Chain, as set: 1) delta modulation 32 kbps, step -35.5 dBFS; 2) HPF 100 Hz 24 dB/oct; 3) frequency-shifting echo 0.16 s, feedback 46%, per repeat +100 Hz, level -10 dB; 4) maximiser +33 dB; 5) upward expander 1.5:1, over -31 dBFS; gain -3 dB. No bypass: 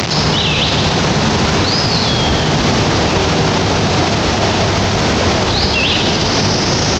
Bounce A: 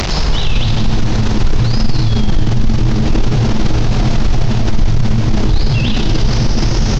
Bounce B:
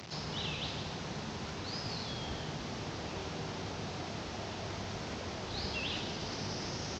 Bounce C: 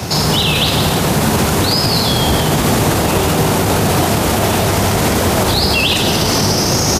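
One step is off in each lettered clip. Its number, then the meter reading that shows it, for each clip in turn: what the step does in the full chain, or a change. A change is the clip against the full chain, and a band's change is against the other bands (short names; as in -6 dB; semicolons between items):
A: 2, 125 Hz band +12.0 dB; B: 4, crest factor change +5.0 dB; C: 1, 8 kHz band +4.0 dB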